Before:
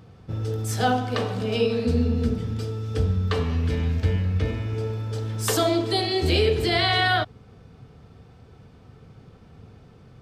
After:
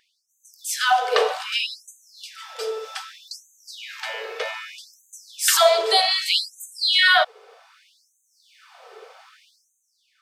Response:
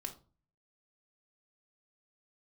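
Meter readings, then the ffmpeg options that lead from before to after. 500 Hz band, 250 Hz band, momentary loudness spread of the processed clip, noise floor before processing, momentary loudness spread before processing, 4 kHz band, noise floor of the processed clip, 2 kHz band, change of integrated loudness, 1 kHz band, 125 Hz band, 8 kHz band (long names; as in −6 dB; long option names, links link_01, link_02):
0.0 dB, below −25 dB, 22 LU, −50 dBFS, 9 LU, +7.0 dB, −70 dBFS, +6.0 dB, +4.0 dB, +4.0 dB, below −40 dB, +8.5 dB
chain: -af "dynaudnorm=framelen=130:gausssize=9:maxgain=13dB,afftfilt=real='re*gte(b*sr/1024,370*pow(6200/370,0.5+0.5*sin(2*PI*0.64*pts/sr)))':imag='im*gte(b*sr/1024,370*pow(6200/370,0.5+0.5*sin(2*PI*0.64*pts/sr)))':win_size=1024:overlap=0.75"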